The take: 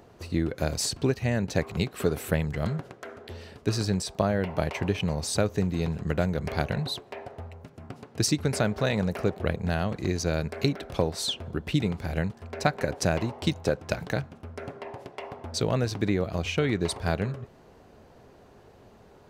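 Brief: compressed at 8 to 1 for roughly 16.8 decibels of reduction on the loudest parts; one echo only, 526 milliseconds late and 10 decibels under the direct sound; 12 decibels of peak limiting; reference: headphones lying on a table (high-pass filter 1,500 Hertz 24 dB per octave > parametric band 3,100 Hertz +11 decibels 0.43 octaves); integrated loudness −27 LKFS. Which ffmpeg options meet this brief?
ffmpeg -i in.wav -af "acompressor=threshold=-38dB:ratio=8,alimiter=level_in=8.5dB:limit=-24dB:level=0:latency=1,volume=-8.5dB,highpass=frequency=1500:width=0.5412,highpass=frequency=1500:width=1.3066,equalizer=frequency=3100:width_type=o:width=0.43:gain=11,aecho=1:1:526:0.316,volume=19.5dB" out.wav

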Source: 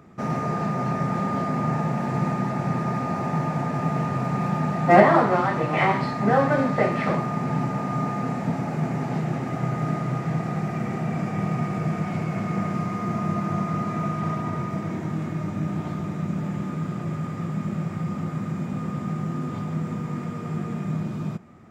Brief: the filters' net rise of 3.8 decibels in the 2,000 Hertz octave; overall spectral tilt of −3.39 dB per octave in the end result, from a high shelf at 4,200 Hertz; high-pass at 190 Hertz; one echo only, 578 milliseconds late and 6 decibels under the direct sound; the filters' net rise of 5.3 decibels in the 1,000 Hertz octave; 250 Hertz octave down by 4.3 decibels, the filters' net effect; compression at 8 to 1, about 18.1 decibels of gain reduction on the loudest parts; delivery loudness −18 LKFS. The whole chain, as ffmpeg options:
ffmpeg -i in.wav -af "highpass=190,equalizer=frequency=250:width_type=o:gain=-3,equalizer=frequency=1000:width_type=o:gain=7,equalizer=frequency=2000:width_type=o:gain=3.5,highshelf=frequency=4200:gain=-6.5,acompressor=threshold=-26dB:ratio=8,aecho=1:1:578:0.501,volume=11.5dB" out.wav

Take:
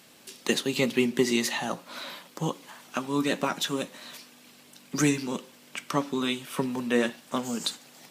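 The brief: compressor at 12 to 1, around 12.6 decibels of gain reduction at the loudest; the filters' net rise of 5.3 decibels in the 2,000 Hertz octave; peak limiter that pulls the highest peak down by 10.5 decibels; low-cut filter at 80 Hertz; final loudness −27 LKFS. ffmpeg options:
ffmpeg -i in.wav -af "highpass=80,equalizer=frequency=2000:width_type=o:gain=6.5,acompressor=threshold=-30dB:ratio=12,volume=10.5dB,alimiter=limit=-14.5dB:level=0:latency=1" out.wav

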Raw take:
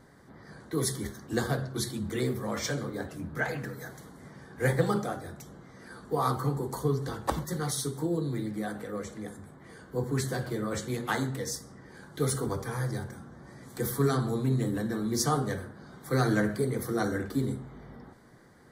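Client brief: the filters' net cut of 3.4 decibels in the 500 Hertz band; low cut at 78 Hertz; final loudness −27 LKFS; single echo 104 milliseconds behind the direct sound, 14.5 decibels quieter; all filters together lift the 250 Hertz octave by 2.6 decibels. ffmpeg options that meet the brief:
ffmpeg -i in.wav -af "highpass=78,equalizer=frequency=250:width_type=o:gain=5,equalizer=frequency=500:width_type=o:gain=-6,aecho=1:1:104:0.188,volume=4dB" out.wav

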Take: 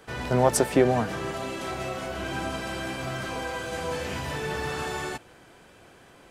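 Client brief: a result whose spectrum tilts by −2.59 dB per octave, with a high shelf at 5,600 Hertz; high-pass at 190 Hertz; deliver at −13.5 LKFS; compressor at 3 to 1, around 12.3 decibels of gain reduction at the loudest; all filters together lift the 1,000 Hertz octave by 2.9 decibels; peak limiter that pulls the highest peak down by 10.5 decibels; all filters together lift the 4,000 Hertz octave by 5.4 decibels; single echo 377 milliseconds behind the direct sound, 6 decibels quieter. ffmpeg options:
ffmpeg -i in.wav -af "highpass=190,equalizer=frequency=1000:width_type=o:gain=3.5,equalizer=frequency=4000:width_type=o:gain=5,highshelf=frequency=5600:gain=5,acompressor=threshold=-32dB:ratio=3,alimiter=level_in=5dB:limit=-24dB:level=0:latency=1,volume=-5dB,aecho=1:1:377:0.501,volume=23.5dB" out.wav

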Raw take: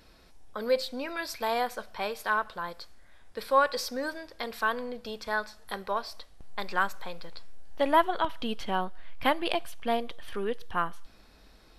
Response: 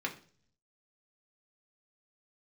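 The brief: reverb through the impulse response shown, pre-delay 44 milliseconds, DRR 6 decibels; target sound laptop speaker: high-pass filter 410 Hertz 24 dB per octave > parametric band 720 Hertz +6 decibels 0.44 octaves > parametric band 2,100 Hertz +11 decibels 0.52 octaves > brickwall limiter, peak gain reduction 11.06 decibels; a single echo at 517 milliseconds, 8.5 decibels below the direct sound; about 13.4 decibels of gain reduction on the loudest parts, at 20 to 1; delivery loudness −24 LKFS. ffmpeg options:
-filter_complex "[0:a]acompressor=threshold=-30dB:ratio=20,aecho=1:1:517:0.376,asplit=2[link_01][link_02];[1:a]atrim=start_sample=2205,adelay=44[link_03];[link_02][link_03]afir=irnorm=-1:irlink=0,volume=-10.5dB[link_04];[link_01][link_04]amix=inputs=2:normalize=0,highpass=frequency=410:width=0.5412,highpass=frequency=410:width=1.3066,equalizer=frequency=720:width_type=o:width=0.44:gain=6,equalizer=frequency=2100:width_type=o:width=0.52:gain=11,volume=13dB,alimiter=limit=-13dB:level=0:latency=1"

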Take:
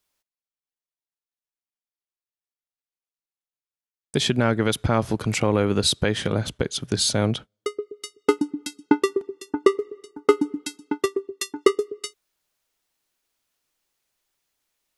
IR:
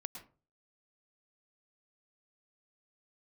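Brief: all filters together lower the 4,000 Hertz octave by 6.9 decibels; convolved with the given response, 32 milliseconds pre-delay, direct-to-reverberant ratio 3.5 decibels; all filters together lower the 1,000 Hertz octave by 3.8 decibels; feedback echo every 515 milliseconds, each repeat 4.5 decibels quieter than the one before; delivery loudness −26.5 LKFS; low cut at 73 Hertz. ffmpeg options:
-filter_complex "[0:a]highpass=73,equalizer=frequency=1000:width_type=o:gain=-4.5,equalizer=frequency=4000:width_type=o:gain=-8,aecho=1:1:515|1030|1545|2060|2575|3090|3605|4120|4635:0.596|0.357|0.214|0.129|0.0772|0.0463|0.0278|0.0167|0.01,asplit=2[link_01][link_02];[1:a]atrim=start_sample=2205,adelay=32[link_03];[link_02][link_03]afir=irnorm=-1:irlink=0,volume=-1dB[link_04];[link_01][link_04]amix=inputs=2:normalize=0,volume=-3.5dB"

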